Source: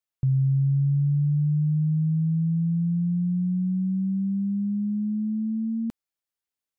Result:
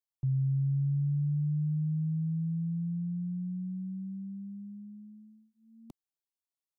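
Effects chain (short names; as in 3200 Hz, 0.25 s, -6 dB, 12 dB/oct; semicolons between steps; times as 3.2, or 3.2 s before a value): fixed phaser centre 330 Hz, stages 8; gain -7 dB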